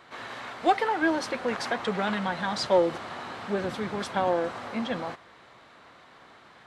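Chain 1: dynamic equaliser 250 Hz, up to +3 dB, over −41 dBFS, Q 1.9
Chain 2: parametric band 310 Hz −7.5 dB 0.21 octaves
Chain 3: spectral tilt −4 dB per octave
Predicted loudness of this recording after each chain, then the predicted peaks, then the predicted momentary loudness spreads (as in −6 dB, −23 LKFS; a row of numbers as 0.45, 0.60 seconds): −28.0, −29.0, −24.5 LKFS; −10.0, −11.0, −6.5 dBFS; 14, 13, 14 LU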